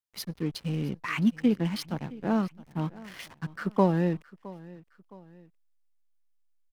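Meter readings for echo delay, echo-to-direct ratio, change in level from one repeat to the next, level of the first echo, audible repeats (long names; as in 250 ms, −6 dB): 665 ms, −19.0 dB, −7.0 dB, −20.0 dB, 2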